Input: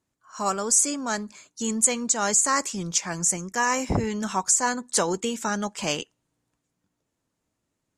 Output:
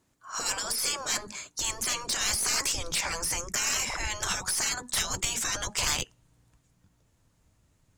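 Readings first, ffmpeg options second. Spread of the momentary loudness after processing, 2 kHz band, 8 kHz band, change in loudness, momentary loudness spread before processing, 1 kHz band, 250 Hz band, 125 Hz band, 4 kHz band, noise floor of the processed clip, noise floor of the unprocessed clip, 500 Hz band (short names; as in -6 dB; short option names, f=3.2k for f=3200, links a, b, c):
6 LU, -1.5 dB, -5.0 dB, -4.5 dB, 10 LU, -9.0 dB, -16.5 dB, -8.0 dB, +4.0 dB, -69 dBFS, -80 dBFS, -12.0 dB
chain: -af "afftfilt=real='re*lt(hypot(re,im),0.0631)':imag='im*lt(hypot(re,im),0.0631)':win_size=1024:overlap=0.75,asubboost=boost=5:cutoff=120,aeval=exprs='0.0841*(cos(1*acos(clip(val(0)/0.0841,-1,1)))-cos(1*PI/2))+0.0266*(cos(4*acos(clip(val(0)/0.0841,-1,1)))-cos(4*PI/2))+0.0133*(cos(5*acos(clip(val(0)/0.0841,-1,1)))-cos(5*PI/2))+0.00944*(cos(6*acos(clip(val(0)/0.0841,-1,1)))-cos(6*PI/2))+0.00473*(cos(7*acos(clip(val(0)/0.0841,-1,1)))-cos(7*PI/2))':c=same,volume=5.5dB"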